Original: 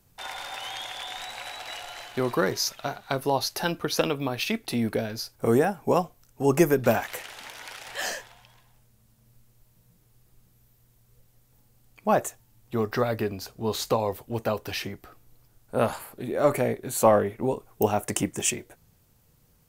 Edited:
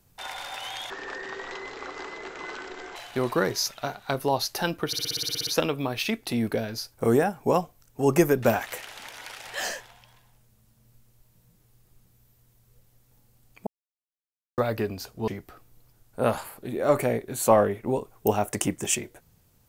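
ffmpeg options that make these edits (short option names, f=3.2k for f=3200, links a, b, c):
-filter_complex "[0:a]asplit=16[a][b][c][d][e][f][g][h][i][j][k][l][m][n][o][p];[a]atrim=end=0.904[q];[b]atrim=start=0.9:end=1.97,asetpts=PTS-STARTPTS,asetrate=22932,aresample=44100,atrim=end_sample=90744,asetpts=PTS-STARTPTS[r];[c]atrim=start=1.966:end=3.942[s];[d]atrim=start=3.878:end=3.942[t];[e]atrim=start=3.878:end=3.942[u];[f]atrim=start=3.878:end=3.942[v];[g]atrim=start=3.878:end=3.942[w];[h]atrim=start=3.878:end=3.942[x];[i]atrim=start=3.878:end=3.942[y];[j]atrim=start=3.878:end=3.942[z];[k]atrim=start=3.878:end=3.942[aa];[l]atrim=start=3.878:end=3.942[ab];[m]atrim=start=3.878:end=12.08,asetpts=PTS-STARTPTS,afade=t=out:st=8.198:d=0.004:c=hsin[ac];[n]atrim=start=12.08:end=12.99,asetpts=PTS-STARTPTS,volume=0[ad];[o]atrim=start=12.99:end=13.692,asetpts=PTS-STARTPTS,afade=t=in:d=0.004:c=hsin[ae];[p]atrim=start=14.828[af];[q][r]acrossfade=d=0.004:c1=hsin:c2=hsin[ag];[ag][s]acrossfade=d=0.004:c1=hsin:c2=hsin[ah];[ah][t]acrossfade=d=0.004:c1=hsin:c2=hsin[ai];[ai][u]acrossfade=d=0.004:c1=hsin:c2=hsin[aj];[aj][v]acrossfade=d=0.004:c1=hsin:c2=hsin[ak];[ak][w]acrossfade=d=0.004:c1=hsin:c2=hsin[al];[al][x]acrossfade=d=0.004:c1=hsin:c2=hsin[am];[am][y]acrossfade=d=0.004:c1=hsin:c2=hsin[an];[an][z]acrossfade=d=0.004:c1=hsin:c2=hsin[ao];[ao][aa]acrossfade=d=0.004:c1=hsin:c2=hsin[ap];[ap][ab]acrossfade=d=0.004:c1=hsin:c2=hsin[aq];[ac][ad][ae]concat=n=3:v=0:a=1[ar];[aq][ar]acrossfade=d=0.004:c1=hsin:c2=hsin[as];[as][af]acrossfade=d=0.004:c1=hsin:c2=hsin"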